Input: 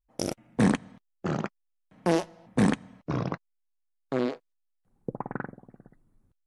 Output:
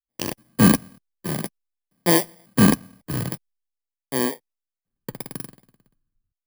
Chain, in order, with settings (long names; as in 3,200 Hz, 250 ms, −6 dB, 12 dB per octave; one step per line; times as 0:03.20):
samples in bit-reversed order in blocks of 32 samples
multiband upward and downward expander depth 70%
level +2.5 dB